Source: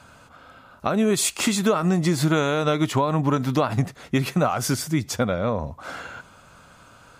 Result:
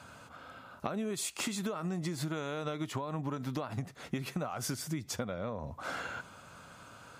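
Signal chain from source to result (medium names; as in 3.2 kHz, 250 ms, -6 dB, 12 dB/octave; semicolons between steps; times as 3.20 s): high-pass 73 Hz; compression 12:1, threshold -30 dBFS, peak gain reduction 15.5 dB; trim -2.5 dB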